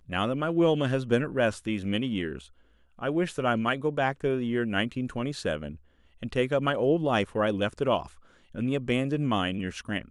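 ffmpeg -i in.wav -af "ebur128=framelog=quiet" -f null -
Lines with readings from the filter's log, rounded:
Integrated loudness:
  I:         -27.9 LUFS
  Threshold: -38.4 LUFS
Loudness range:
  LRA:         1.7 LU
  Threshold: -48.6 LUFS
  LRA low:   -29.4 LUFS
  LRA high:  -27.7 LUFS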